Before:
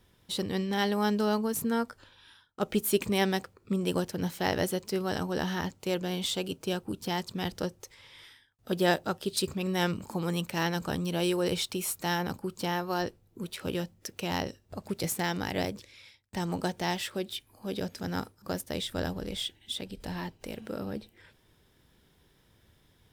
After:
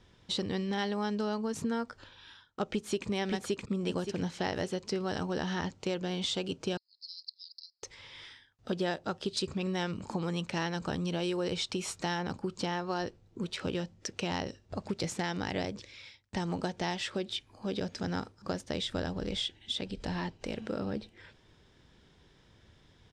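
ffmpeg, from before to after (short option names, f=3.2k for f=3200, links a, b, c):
-filter_complex "[0:a]asplit=2[a][b];[b]afade=t=in:st=2.65:d=0.01,afade=t=out:st=3.08:d=0.01,aecho=0:1:570|1140|1710|2280:0.891251|0.267375|0.0802126|0.0240638[c];[a][c]amix=inputs=2:normalize=0,asettb=1/sr,asplit=3[d][e][f];[d]atrim=end=6.774[g];[e]atrim=start=6.77:end=7.83,asetpts=PTS-STARTPTS,afade=t=in:d=0.004:c=qsin,afade=t=out:st=1.056:d=0.004:c=qsin,asuperpass=centerf=4600:order=8:qfactor=4.1[h];[f]atrim=start=7.826[i];[g][h]acrossfade=d=0.004:c1=hsin:c2=qsin[j];[j][i]acrossfade=d=0.004:c1=qsin:c2=hsin,lowpass=f=7k:w=0.5412,lowpass=f=7k:w=1.3066,acompressor=threshold=-33dB:ratio=4,volume=3dB"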